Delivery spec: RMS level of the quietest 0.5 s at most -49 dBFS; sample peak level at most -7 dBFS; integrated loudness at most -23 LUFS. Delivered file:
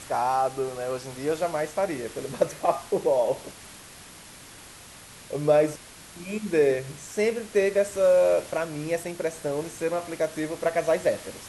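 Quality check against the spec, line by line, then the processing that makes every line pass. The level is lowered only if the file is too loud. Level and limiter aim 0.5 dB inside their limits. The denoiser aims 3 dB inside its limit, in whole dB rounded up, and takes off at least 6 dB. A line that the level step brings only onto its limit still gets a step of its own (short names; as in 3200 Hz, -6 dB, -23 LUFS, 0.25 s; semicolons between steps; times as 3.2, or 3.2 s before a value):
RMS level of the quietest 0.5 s -47 dBFS: fail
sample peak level -9.0 dBFS: OK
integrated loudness -26.0 LUFS: OK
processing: denoiser 6 dB, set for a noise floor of -47 dBFS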